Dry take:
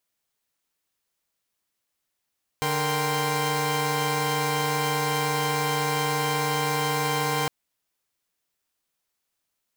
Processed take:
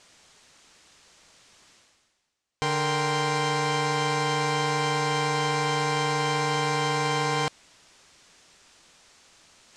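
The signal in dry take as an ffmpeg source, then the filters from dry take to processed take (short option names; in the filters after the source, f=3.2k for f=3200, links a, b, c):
-f lavfi -i "aevalsrc='0.0473*((2*mod(146.83*t,1)-1)+(2*mod(466.16*t,1)-1)+(2*mod(783.99*t,1)-1)+(2*mod(1046.5*t,1)-1))':d=4.86:s=44100"
-af "lowpass=f=7.7k:w=0.5412,lowpass=f=7.7k:w=1.3066,areverse,acompressor=mode=upward:threshold=-35dB:ratio=2.5,areverse"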